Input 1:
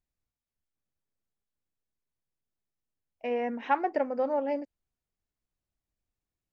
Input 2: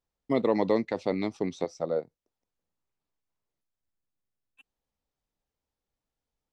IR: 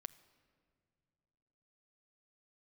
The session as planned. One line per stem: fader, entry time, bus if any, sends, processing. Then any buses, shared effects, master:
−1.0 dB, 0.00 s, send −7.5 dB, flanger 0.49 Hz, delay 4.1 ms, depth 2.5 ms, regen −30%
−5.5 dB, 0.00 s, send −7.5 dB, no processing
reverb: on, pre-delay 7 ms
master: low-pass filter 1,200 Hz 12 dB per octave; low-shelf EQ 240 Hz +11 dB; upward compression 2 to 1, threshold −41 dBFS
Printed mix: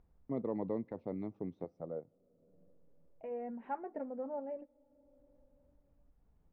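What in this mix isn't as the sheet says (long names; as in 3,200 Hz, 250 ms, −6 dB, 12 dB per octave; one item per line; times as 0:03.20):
stem 1 −1.0 dB → −12.0 dB
stem 2 −5.5 dB → −17.0 dB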